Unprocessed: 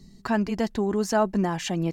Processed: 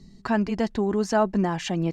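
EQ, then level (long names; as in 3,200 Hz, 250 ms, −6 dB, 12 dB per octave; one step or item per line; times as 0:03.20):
high-frequency loss of the air 52 metres
+1.0 dB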